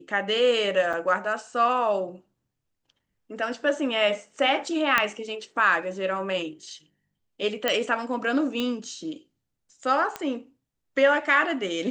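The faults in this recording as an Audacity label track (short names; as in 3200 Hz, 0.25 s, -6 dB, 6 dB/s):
0.930000	0.940000	gap 5.7 ms
4.980000	4.980000	pop -6 dBFS
7.680000	7.680000	pop -8 dBFS
8.600000	8.600000	pop -15 dBFS
10.160000	10.160000	pop -15 dBFS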